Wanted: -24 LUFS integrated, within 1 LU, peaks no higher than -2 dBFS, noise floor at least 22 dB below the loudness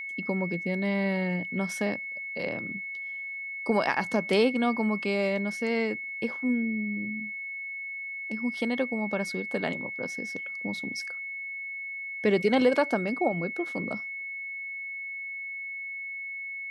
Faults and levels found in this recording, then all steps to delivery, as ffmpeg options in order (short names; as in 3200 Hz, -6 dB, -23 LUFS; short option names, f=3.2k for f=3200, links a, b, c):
steady tone 2200 Hz; tone level -34 dBFS; loudness -29.5 LUFS; peak -11.0 dBFS; loudness target -24.0 LUFS
-> -af "bandreject=f=2.2k:w=30"
-af "volume=5.5dB"